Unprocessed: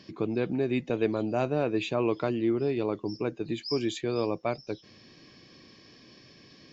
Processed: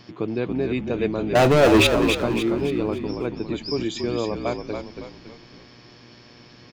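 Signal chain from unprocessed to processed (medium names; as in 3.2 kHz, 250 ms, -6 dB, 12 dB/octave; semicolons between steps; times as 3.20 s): 1.35–1.87 s: waveshaping leveller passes 5; frequency-shifting echo 279 ms, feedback 43%, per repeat -46 Hz, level -6 dB; mains buzz 120 Hz, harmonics 30, -56 dBFS -4 dB/octave; trim +3 dB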